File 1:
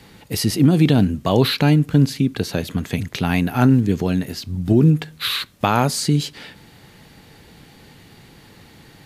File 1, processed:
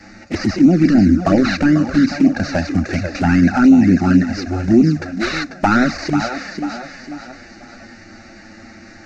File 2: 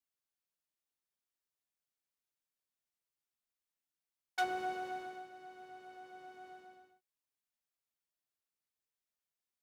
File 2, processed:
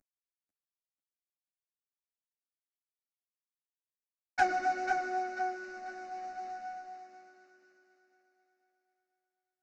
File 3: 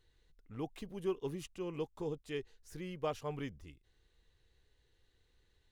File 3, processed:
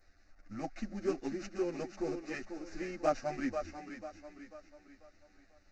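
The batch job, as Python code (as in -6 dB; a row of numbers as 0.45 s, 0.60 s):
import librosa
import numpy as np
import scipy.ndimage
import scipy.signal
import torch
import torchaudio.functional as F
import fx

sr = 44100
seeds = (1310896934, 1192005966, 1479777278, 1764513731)

p1 = fx.cvsd(x, sr, bps=32000)
p2 = fx.over_compress(p1, sr, threshold_db=-20.0, ratio=-1.0)
p3 = p1 + (p2 * librosa.db_to_amplitude(-0.5))
p4 = fx.fixed_phaser(p3, sr, hz=660.0, stages=8)
p5 = p4 + fx.echo_thinned(p4, sr, ms=492, feedback_pct=44, hz=160.0, wet_db=-7.0, dry=0)
p6 = fx.env_flanger(p5, sr, rest_ms=10.3, full_db=-10.5)
y = p6 * librosa.db_to_amplitude(5.5)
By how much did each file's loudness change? +3.5 LU, +7.5 LU, +3.0 LU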